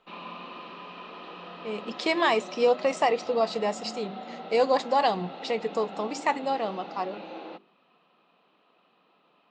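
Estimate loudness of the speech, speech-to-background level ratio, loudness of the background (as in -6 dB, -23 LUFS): -27.0 LUFS, 14.0 dB, -41.0 LUFS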